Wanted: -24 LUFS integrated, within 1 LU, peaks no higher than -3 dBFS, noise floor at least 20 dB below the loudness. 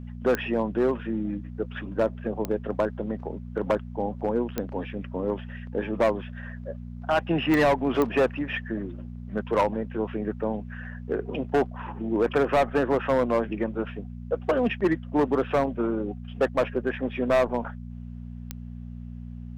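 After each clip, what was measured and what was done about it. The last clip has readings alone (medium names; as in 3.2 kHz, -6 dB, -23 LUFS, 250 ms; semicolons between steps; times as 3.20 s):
clicks found 6; hum 60 Hz; highest harmonic 240 Hz; hum level -35 dBFS; loudness -27.0 LUFS; peak level -8.5 dBFS; loudness target -24.0 LUFS
-> de-click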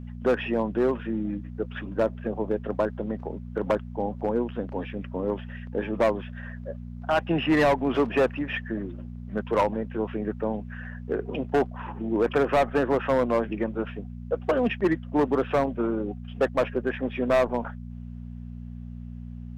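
clicks found 0; hum 60 Hz; highest harmonic 240 Hz; hum level -35 dBFS
-> de-hum 60 Hz, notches 4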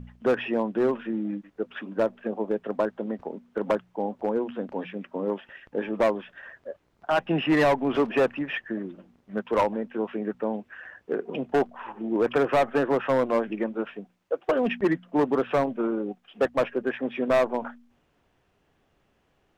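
hum not found; loudness -27.0 LUFS; peak level -12.5 dBFS; loudness target -24.0 LUFS
-> trim +3 dB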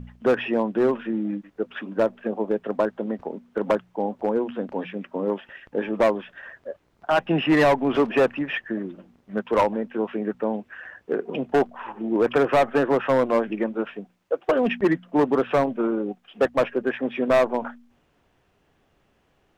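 loudness -24.0 LUFS; peak level -9.5 dBFS; noise floor -66 dBFS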